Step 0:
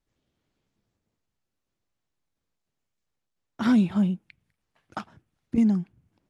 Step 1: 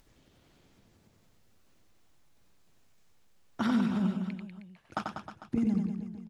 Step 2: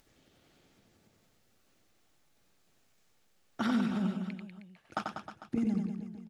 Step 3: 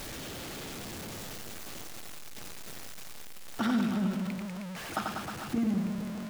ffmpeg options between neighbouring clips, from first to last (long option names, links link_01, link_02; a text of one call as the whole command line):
ffmpeg -i in.wav -af "acompressor=threshold=-29dB:ratio=6,aecho=1:1:90|193.5|312.5|449.4|606.8:0.631|0.398|0.251|0.158|0.1,acompressor=mode=upward:threshold=-53dB:ratio=2.5,volume=1.5dB" out.wav
ffmpeg -i in.wav -af "lowshelf=frequency=140:gain=-8.5,bandreject=frequency=1000:width=9.3" out.wav
ffmpeg -i in.wav -af "aeval=exprs='val(0)+0.5*0.0178*sgn(val(0))':channel_layout=same" out.wav